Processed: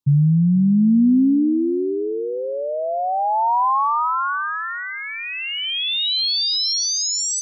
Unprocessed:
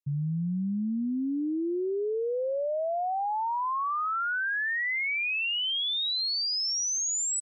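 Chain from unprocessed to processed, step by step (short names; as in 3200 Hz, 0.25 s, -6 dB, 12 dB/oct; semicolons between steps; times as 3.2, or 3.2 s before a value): graphic EQ 125/250/500/1000/2000/4000 Hz +11/+10/-4/+10/-10/+6 dB; on a send: thinning echo 0.48 s, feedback 17%, high-pass 840 Hz, level -3.5 dB; on the sum: gain +3.5 dB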